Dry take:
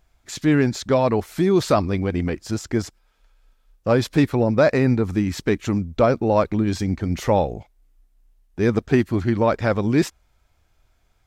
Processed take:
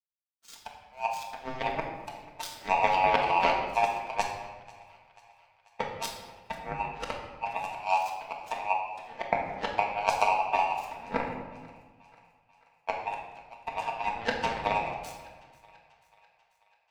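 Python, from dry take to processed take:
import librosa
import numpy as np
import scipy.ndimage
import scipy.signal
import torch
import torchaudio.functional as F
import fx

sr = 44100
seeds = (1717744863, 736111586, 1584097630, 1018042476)

p1 = fx.band_invert(x, sr, width_hz=1000)
p2 = fx.peak_eq(p1, sr, hz=410.0, db=-6.5, octaves=0.43)
p3 = fx.over_compress(p2, sr, threshold_db=-23.0, ratio=-0.5)
p4 = fx.stretch_vocoder(p3, sr, factor=1.5)
p5 = fx.power_curve(p4, sr, exponent=3.0)
p6 = p5 + fx.echo_thinned(p5, sr, ms=489, feedback_pct=59, hz=480.0, wet_db=-22.0, dry=0)
p7 = fx.room_shoebox(p6, sr, seeds[0], volume_m3=780.0, walls='mixed', distance_m=1.6)
y = p7 * 10.0 ** (4.5 / 20.0)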